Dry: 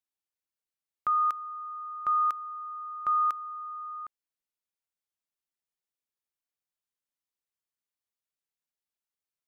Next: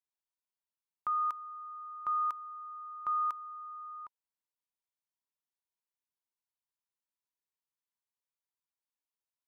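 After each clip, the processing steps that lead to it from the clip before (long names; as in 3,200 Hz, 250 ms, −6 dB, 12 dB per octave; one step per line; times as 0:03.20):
parametric band 970 Hz +11.5 dB 0.25 octaves
level −7.5 dB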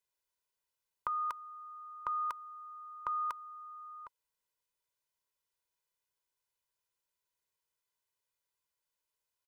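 comb filter 2 ms, depth 67%
level +4 dB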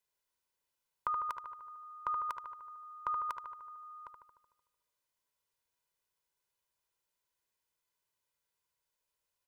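feedback echo with a low-pass in the loop 75 ms, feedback 67%, low-pass 2,200 Hz, level −5 dB
level +1 dB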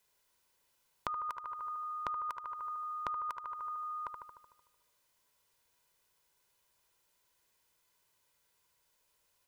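downward compressor 6 to 1, threshold −48 dBFS, peak gain reduction 16 dB
level +11 dB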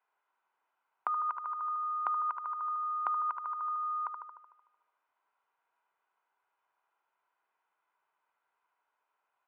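loudspeaker in its box 490–2,200 Hz, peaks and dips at 530 Hz −8 dB, 770 Hz +9 dB, 1,300 Hz +7 dB, 1,900 Hz −5 dB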